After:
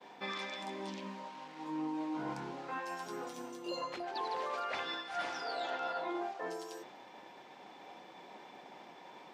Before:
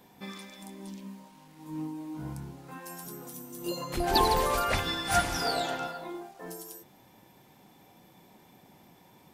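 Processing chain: HPF 450 Hz 12 dB/oct; expander -58 dBFS; reverse; compressor 20:1, threshold -44 dBFS, peak gain reduction 25 dB; reverse; air absorption 160 m; gain +10.5 dB

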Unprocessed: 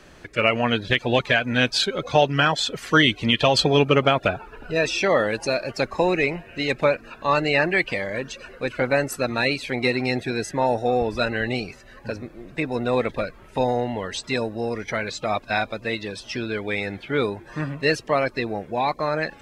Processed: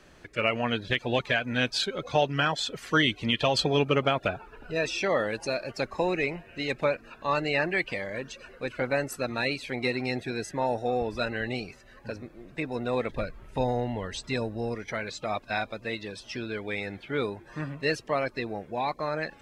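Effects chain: 13.12–14.75 low shelf 120 Hz +11.5 dB; gain -6.5 dB

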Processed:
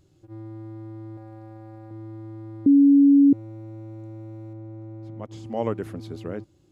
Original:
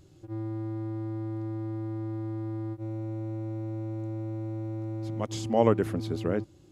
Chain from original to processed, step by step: 1.17–1.91 power-law curve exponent 3; 2.66–3.33 bleep 281 Hz -6.5 dBFS; 4.53–5.46 high shelf 2900 Hz -12 dB; gain -4.5 dB

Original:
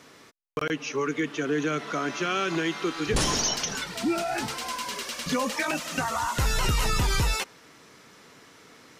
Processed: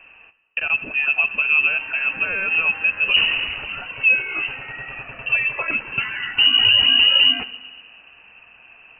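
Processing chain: resonant low shelf 460 Hz +8 dB, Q 1.5; on a send at -12.5 dB: reverb RT60 1.5 s, pre-delay 5 ms; on the sum: inverted band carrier 2900 Hz

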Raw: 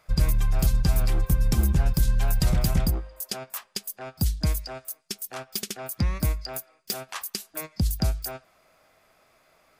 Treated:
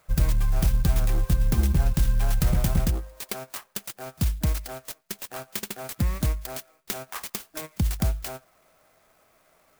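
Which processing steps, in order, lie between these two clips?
clock jitter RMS 0.063 ms

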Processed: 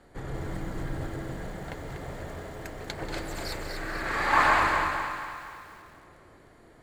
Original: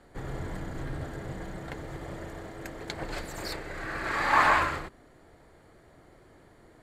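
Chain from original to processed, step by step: split-band echo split 660 Hz, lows 0.143 s, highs 0.243 s, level -6 dB; lo-fi delay 0.186 s, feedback 35%, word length 8-bit, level -11 dB

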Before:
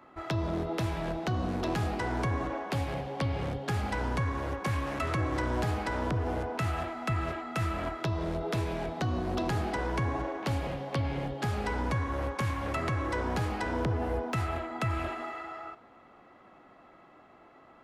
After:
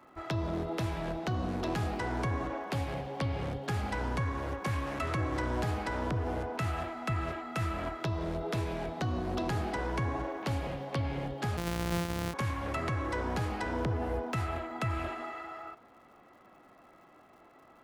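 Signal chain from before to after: 11.57–12.34 sample sorter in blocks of 256 samples; crackle 180/s -56 dBFS; gain -2 dB

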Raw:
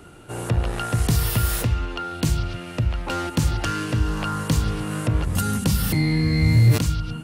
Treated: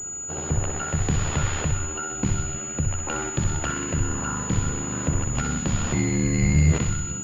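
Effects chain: ring modulator 37 Hz; thinning echo 63 ms, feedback 66%, high-pass 770 Hz, level -6 dB; pulse-width modulation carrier 6900 Hz

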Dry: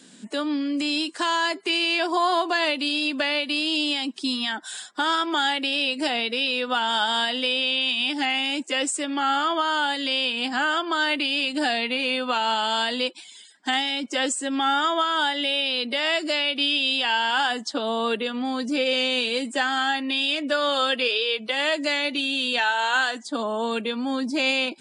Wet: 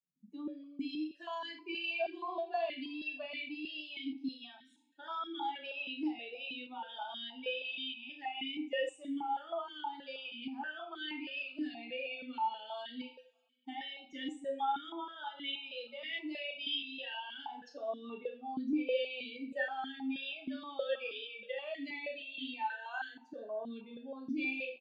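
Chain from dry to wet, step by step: per-bin expansion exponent 2; doubler 33 ms -6 dB; two-slope reverb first 0.42 s, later 2.2 s, from -27 dB, DRR 2 dB; vowel sequencer 6.3 Hz; gain -2 dB

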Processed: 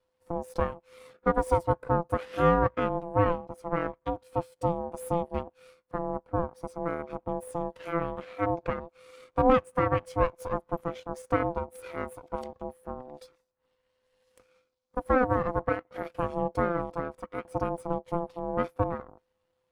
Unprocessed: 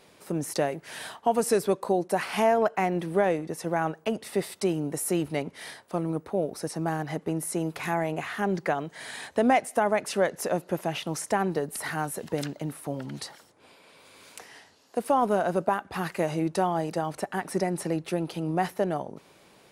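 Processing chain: half-wave rectifier; ring modulator 510 Hz; spectral expander 1.5:1; gain +4 dB

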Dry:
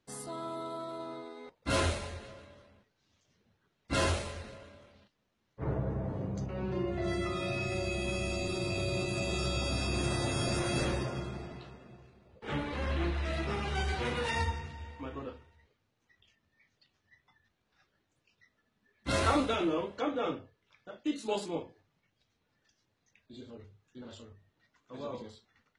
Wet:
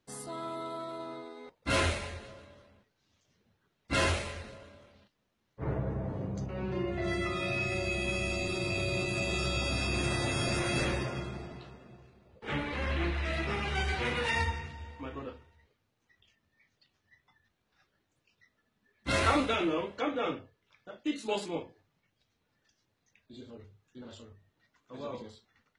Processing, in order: dynamic EQ 2200 Hz, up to +6 dB, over -53 dBFS, Q 1.4

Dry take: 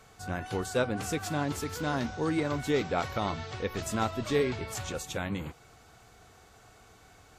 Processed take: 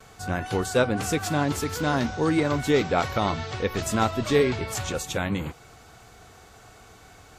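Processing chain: gate with hold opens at -52 dBFS; gain +6.5 dB

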